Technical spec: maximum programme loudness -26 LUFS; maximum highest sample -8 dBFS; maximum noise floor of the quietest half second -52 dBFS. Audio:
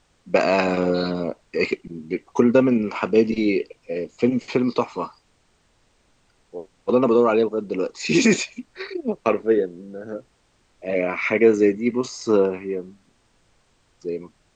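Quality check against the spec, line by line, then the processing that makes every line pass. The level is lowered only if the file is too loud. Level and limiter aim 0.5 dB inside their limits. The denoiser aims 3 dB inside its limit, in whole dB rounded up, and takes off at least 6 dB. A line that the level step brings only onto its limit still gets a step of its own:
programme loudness -21.5 LUFS: fail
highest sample -4.5 dBFS: fail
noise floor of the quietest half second -63 dBFS: pass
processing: trim -5 dB

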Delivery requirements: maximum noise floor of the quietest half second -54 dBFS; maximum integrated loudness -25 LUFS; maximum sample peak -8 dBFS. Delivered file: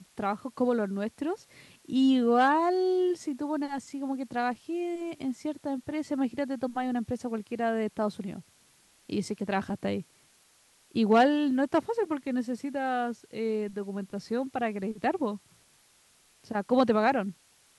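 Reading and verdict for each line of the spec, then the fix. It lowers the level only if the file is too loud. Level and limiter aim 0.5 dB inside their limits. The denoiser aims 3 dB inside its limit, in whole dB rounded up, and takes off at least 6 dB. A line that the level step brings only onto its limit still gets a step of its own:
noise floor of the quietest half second -63 dBFS: pass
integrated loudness -29.5 LUFS: pass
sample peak -10.5 dBFS: pass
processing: none needed

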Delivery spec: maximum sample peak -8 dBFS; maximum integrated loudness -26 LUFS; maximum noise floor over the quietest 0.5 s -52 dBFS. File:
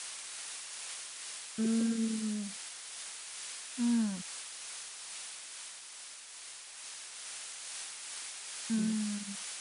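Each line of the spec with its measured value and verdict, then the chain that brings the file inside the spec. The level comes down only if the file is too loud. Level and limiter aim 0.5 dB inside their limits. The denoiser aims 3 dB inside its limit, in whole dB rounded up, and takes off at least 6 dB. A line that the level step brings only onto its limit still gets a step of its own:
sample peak -21.5 dBFS: pass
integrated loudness -37.5 LUFS: pass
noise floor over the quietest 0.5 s -49 dBFS: fail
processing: noise reduction 6 dB, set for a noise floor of -49 dBFS

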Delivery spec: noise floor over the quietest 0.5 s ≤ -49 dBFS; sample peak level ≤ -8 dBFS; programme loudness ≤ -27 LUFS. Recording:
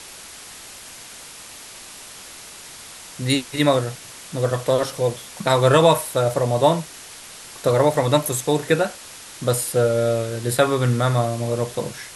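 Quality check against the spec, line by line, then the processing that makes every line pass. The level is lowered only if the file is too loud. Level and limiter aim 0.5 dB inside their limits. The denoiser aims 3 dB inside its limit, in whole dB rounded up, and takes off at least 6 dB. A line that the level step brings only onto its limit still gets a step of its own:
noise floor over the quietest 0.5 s -40 dBFS: fail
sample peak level -4.0 dBFS: fail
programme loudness -20.5 LUFS: fail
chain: noise reduction 6 dB, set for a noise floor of -40 dBFS; trim -7 dB

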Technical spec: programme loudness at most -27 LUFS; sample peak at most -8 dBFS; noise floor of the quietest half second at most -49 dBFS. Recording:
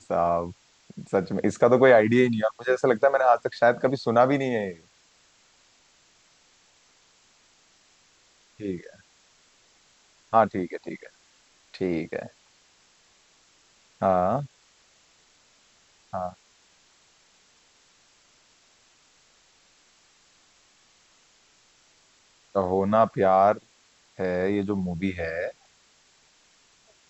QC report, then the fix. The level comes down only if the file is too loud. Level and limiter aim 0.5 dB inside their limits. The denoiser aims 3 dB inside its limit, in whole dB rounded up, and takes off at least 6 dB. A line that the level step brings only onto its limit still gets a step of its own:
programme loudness -24.0 LUFS: fail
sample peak -5.5 dBFS: fail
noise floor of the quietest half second -61 dBFS: pass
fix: trim -3.5 dB

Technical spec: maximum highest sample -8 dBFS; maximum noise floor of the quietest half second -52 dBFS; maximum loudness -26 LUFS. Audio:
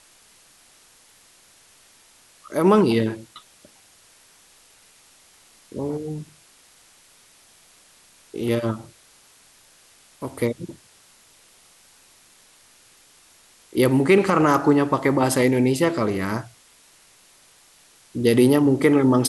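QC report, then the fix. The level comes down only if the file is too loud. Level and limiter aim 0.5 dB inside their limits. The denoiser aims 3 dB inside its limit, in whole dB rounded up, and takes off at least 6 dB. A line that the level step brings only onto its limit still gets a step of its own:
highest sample -5.5 dBFS: fail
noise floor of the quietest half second -54 dBFS: pass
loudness -20.5 LUFS: fail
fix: trim -6 dB

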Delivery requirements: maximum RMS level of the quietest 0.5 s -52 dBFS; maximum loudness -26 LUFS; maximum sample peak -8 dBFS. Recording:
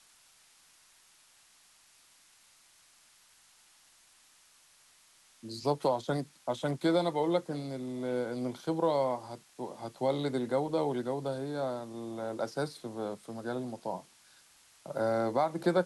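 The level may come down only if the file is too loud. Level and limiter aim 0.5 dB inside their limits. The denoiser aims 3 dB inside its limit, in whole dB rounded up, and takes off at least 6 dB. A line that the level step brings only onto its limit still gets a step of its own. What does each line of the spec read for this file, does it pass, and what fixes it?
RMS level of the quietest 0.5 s -63 dBFS: pass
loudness -33.5 LUFS: pass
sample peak -15.5 dBFS: pass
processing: none needed

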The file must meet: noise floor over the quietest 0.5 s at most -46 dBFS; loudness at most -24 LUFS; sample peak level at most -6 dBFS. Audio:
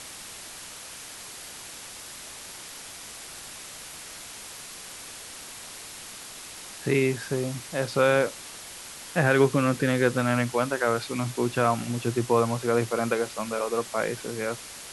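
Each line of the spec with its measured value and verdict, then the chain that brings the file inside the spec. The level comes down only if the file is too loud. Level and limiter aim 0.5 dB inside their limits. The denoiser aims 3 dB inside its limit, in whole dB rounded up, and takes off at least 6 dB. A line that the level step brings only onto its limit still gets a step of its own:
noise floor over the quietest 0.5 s -42 dBFS: fail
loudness -26.0 LUFS: pass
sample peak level -7.5 dBFS: pass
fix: noise reduction 7 dB, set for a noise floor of -42 dBFS

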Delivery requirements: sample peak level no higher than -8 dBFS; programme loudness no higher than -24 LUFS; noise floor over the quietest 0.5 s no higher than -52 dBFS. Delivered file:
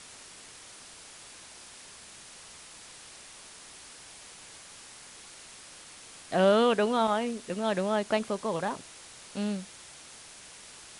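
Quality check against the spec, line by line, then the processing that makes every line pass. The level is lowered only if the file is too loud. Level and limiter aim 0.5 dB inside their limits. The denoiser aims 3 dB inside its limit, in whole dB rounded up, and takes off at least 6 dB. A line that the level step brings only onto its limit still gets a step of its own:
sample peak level -11.5 dBFS: pass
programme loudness -28.5 LUFS: pass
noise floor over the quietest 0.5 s -49 dBFS: fail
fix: noise reduction 6 dB, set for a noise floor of -49 dBFS

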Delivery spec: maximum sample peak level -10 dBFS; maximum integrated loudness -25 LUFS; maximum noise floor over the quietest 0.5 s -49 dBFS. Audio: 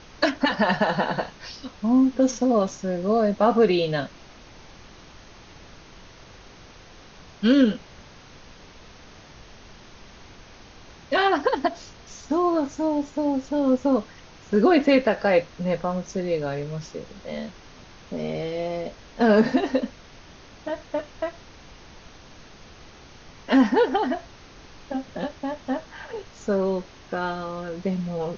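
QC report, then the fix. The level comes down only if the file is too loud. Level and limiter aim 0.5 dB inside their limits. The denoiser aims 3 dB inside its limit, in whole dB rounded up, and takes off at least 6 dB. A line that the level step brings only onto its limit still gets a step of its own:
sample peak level -6.5 dBFS: fail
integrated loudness -24.0 LUFS: fail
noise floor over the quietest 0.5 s -47 dBFS: fail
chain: noise reduction 6 dB, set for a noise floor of -47 dBFS; trim -1.5 dB; peak limiter -10.5 dBFS

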